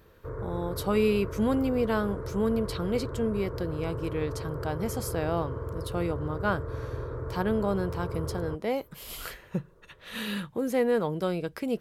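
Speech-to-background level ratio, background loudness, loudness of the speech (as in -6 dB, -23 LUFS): 6.0 dB, -36.5 LUFS, -30.5 LUFS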